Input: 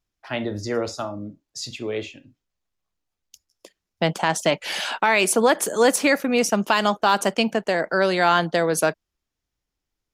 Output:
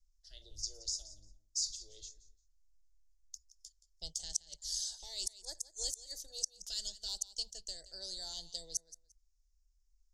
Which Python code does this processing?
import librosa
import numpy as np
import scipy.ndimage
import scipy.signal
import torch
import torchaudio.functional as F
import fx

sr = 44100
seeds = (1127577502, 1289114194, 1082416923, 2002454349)

y = scipy.signal.sosfilt(scipy.signal.cheby2(4, 50, [110.0, 2600.0], 'bandstop', fs=sr, output='sos'), x)
y = fx.gate_flip(y, sr, shuts_db=-19.0, range_db=-39)
y = fx.air_absorb(y, sr, metres=150.0)
y = fx.echo_feedback(y, sr, ms=174, feedback_pct=20, wet_db=-16.5)
y = fx.filter_held_notch(y, sr, hz=2.4, low_hz=910.0, high_hz=3000.0)
y = F.gain(torch.from_numpy(y), 15.0).numpy()